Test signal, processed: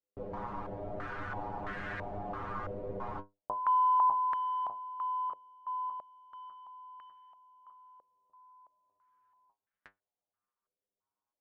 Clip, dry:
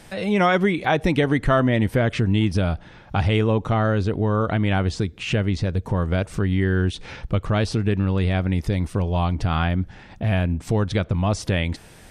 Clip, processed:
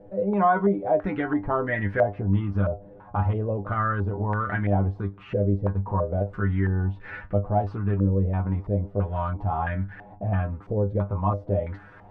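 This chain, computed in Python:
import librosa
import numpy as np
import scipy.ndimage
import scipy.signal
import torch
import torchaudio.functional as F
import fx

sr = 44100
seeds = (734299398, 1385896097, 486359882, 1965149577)

y = fx.law_mismatch(x, sr, coded='mu')
y = fx.stiff_resonator(y, sr, f0_hz=98.0, decay_s=0.21, stiffness=0.002)
y = fx.filter_held_lowpass(y, sr, hz=3.0, low_hz=520.0, high_hz=1700.0)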